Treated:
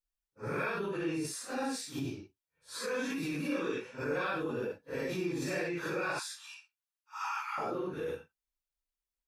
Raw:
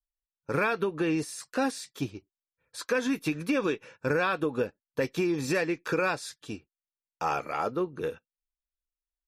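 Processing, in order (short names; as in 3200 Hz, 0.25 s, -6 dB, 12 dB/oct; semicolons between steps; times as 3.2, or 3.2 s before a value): phase scrambler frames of 0.2 s; 6.19–7.58 steep high-pass 880 Hz 96 dB/oct; in parallel at -0.5 dB: negative-ratio compressor -35 dBFS, ratio -1; on the sum: gain -9 dB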